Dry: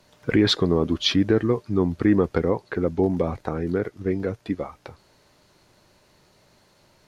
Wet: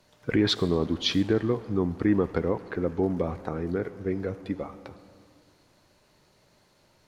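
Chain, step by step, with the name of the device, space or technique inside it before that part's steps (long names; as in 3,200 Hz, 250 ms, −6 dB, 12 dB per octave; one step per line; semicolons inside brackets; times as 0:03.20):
saturated reverb return (on a send at −10.5 dB: convolution reverb RT60 1.8 s, pre-delay 50 ms + soft clipping −25 dBFS, distortion −7 dB)
on the sum: level −4.5 dB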